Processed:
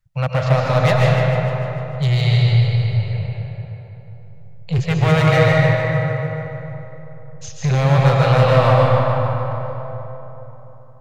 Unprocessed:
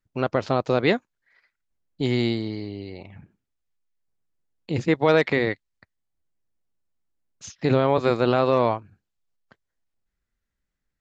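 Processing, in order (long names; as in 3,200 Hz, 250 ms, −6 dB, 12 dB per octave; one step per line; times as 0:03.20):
elliptic band-stop filter 160–500 Hz
low shelf with overshoot 230 Hz +7.5 dB, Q 1.5
gain into a clipping stage and back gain 18 dB
feedback echo with a high-pass in the loop 149 ms, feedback 61%, high-pass 420 Hz, level −9.5 dB
comb and all-pass reverb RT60 3.7 s, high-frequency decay 0.4×, pre-delay 90 ms, DRR −3.5 dB
level +4 dB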